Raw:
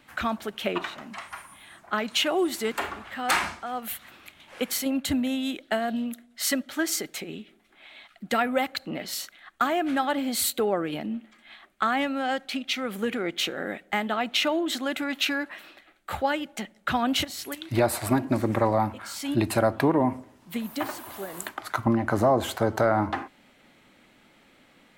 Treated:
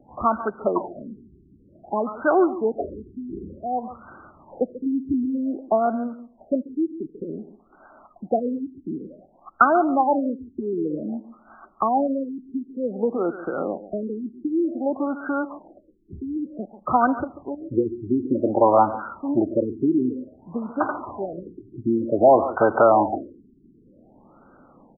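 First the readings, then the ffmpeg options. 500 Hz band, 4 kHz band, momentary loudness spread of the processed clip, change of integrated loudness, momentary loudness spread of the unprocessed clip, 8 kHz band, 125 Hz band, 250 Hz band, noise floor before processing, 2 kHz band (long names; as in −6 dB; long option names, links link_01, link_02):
+5.5 dB, below −40 dB, 17 LU, +3.5 dB, 13 LU, below −40 dB, −4.5 dB, +4.0 dB, −59 dBFS, −4.0 dB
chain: -filter_complex "[0:a]acrossover=split=270[link_01][link_02];[link_01]acompressor=threshold=-45dB:ratio=5[link_03];[link_02]lowpass=frequency=2700:width_type=q:width=4.9[link_04];[link_03][link_04]amix=inputs=2:normalize=0,asplit=2[link_05][link_06];[link_06]adelay=139.9,volume=-14dB,highshelf=frequency=4000:gain=-3.15[link_07];[link_05][link_07]amix=inputs=2:normalize=0,afftfilt=real='re*lt(b*sr/1024,400*pow(1600/400,0.5+0.5*sin(2*PI*0.54*pts/sr)))':imag='im*lt(b*sr/1024,400*pow(1600/400,0.5+0.5*sin(2*PI*0.54*pts/sr)))':win_size=1024:overlap=0.75,volume=7.5dB"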